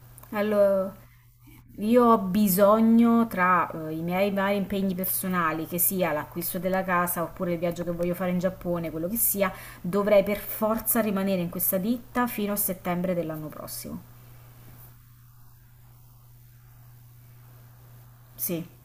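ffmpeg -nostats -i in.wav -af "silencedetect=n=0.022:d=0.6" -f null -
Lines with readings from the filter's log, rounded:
silence_start: 0.90
silence_end: 1.78 | silence_duration: 0.88
silence_start: 13.98
silence_end: 18.39 | silence_duration: 4.41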